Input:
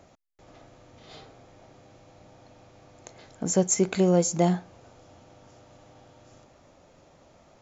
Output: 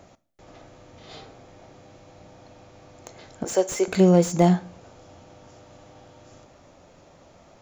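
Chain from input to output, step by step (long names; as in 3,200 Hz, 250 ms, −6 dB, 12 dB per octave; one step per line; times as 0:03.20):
0:03.44–0:03.88: high-pass filter 370 Hz 24 dB per octave
convolution reverb RT60 0.50 s, pre-delay 5 ms, DRR 16 dB
slew-rate limiting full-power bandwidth 110 Hz
level +4 dB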